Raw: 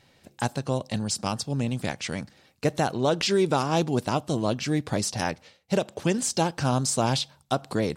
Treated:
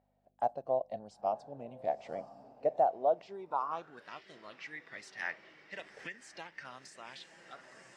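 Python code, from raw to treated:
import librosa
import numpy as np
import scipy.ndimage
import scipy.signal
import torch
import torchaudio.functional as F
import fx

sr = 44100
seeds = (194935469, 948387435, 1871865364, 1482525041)

y = fx.fade_out_tail(x, sr, length_s=1.3)
y = fx.add_hum(y, sr, base_hz=50, snr_db=15)
y = fx.low_shelf(y, sr, hz=140.0, db=4.5)
y = fx.echo_diffused(y, sr, ms=983, feedback_pct=62, wet_db=-11.5)
y = fx.rider(y, sr, range_db=5, speed_s=0.5)
y = fx.noise_reduce_blind(y, sr, reduce_db=7)
y = fx.filter_sweep_bandpass(y, sr, from_hz=690.0, to_hz=1900.0, start_s=3.23, end_s=4.14, q=6.1)
y = fx.dynamic_eq(y, sr, hz=630.0, q=0.87, threshold_db=-44.0, ratio=4.0, max_db=5)
y = fx.band_squash(y, sr, depth_pct=100, at=(5.79, 6.88))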